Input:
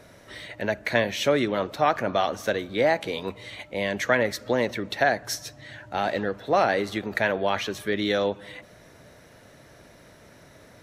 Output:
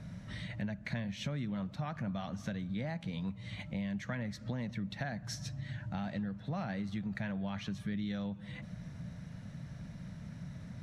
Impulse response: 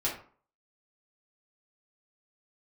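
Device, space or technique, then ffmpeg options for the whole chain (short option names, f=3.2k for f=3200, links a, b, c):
jukebox: -af "lowpass=7.8k,lowshelf=f=260:t=q:w=3:g=13,acompressor=threshold=-31dB:ratio=4,volume=-6dB"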